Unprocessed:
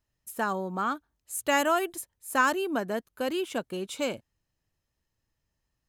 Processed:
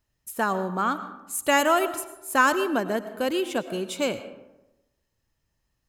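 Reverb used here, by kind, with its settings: algorithmic reverb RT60 1 s, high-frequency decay 0.5×, pre-delay 65 ms, DRR 12 dB; trim +4 dB

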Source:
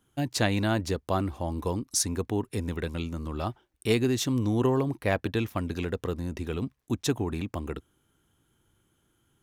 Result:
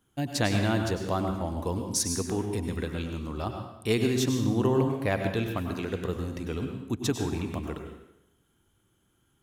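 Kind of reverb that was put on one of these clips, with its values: plate-style reverb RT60 0.85 s, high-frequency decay 0.9×, pre-delay 85 ms, DRR 4.5 dB; trim -1.5 dB

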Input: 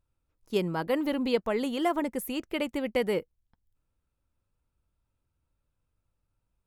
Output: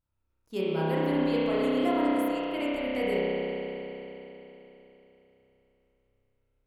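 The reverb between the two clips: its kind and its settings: spring tank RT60 3.6 s, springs 31 ms, chirp 35 ms, DRR -9 dB; trim -8 dB

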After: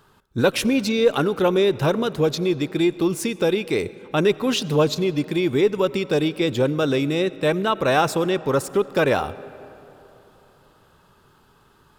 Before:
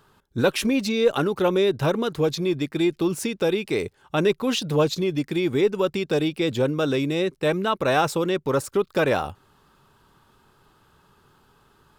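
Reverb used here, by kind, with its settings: algorithmic reverb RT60 3.3 s, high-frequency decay 0.5×, pre-delay 50 ms, DRR 17.5 dB; trim +2 dB

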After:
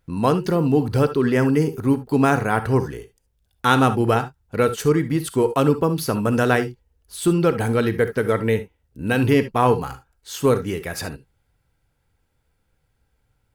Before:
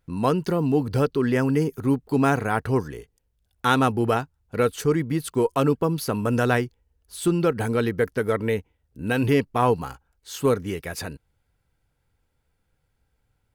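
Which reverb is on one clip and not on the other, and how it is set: gated-style reverb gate 90 ms rising, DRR 11 dB; trim +3 dB

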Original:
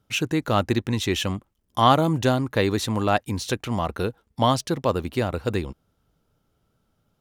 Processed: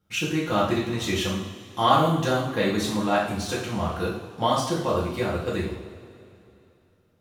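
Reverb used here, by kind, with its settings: two-slope reverb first 0.6 s, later 2.9 s, from -17 dB, DRR -6.5 dB; trim -8 dB

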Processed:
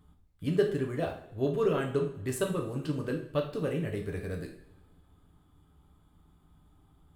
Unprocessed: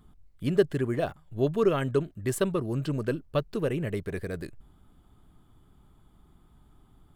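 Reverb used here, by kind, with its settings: two-slope reverb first 0.52 s, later 1.8 s, from -19 dB, DRR 1 dB; trim -5.5 dB

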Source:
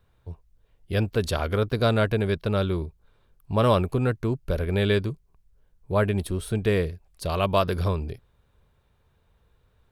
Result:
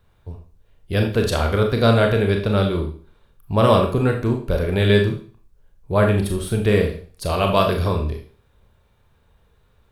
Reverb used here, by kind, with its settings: Schroeder reverb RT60 0.42 s, combs from 27 ms, DRR 2.5 dB; trim +4 dB

